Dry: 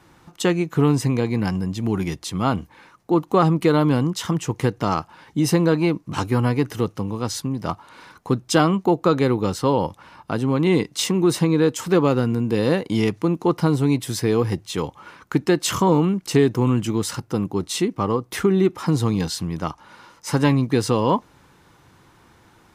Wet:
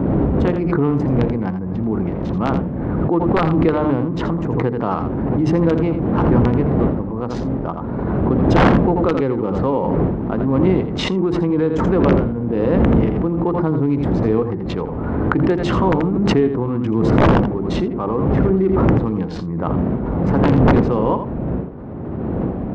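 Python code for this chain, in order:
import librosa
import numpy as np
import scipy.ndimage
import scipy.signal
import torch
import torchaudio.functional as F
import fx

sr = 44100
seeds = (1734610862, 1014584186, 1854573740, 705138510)

p1 = fx.wiener(x, sr, points=15)
p2 = fx.dmg_wind(p1, sr, seeds[0], corner_hz=220.0, level_db=-19.0)
p3 = scipy.signal.sosfilt(scipy.signal.butter(4, 45.0, 'highpass', fs=sr, output='sos'), p2)
p4 = fx.peak_eq(p3, sr, hz=86.0, db=-7.5, octaves=2.0)
p5 = fx.hum_notches(p4, sr, base_hz=50, count=9)
p6 = fx.rider(p5, sr, range_db=4, speed_s=2.0)
p7 = p5 + (p6 * 10.0 ** (1.5 / 20.0))
p8 = (np.mod(10.0 ** (-1.0 / 20.0) * p7 + 1.0, 2.0) - 1.0) / 10.0 ** (-1.0 / 20.0)
p9 = fx.spacing_loss(p8, sr, db_at_10k=43)
p10 = p9 + fx.echo_single(p9, sr, ms=83, db=-9.5, dry=0)
p11 = fx.pre_swell(p10, sr, db_per_s=22.0)
y = p11 * 10.0 ** (-3.5 / 20.0)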